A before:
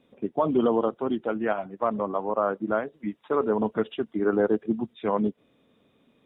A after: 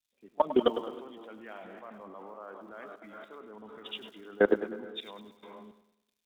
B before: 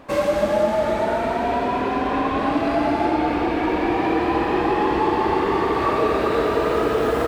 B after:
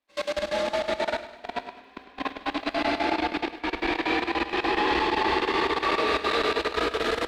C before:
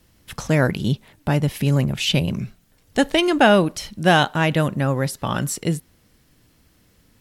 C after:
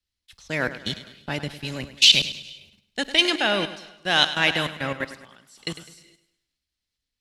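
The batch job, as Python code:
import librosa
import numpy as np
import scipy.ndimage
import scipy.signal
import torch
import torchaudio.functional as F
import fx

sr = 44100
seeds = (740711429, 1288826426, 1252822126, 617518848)

y = scipy.signal.sosfilt(scipy.signal.butter(2, 9800.0, 'lowpass', fs=sr, output='sos'), x)
y = fx.high_shelf(y, sr, hz=2900.0, db=6.5)
y = fx.rev_gated(y, sr, seeds[0], gate_ms=480, shape='rising', drr_db=11.5)
y = fx.level_steps(y, sr, step_db=20)
y = fx.graphic_eq(y, sr, hz=(125, 2000, 4000), db=(-8, 6, 10))
y = fx.dmg_crackle(y, sr, seeds[1], per_s=290.0, level_db=-50.0)
y = fx.echo_feedback(y, sr, ms=103, feedback_pct=57, wet_db=-12.0)
y = fx.band_widen(y, sr, depth_pct=70)
y = y * 10.0 ** (-5.5 / 20.0)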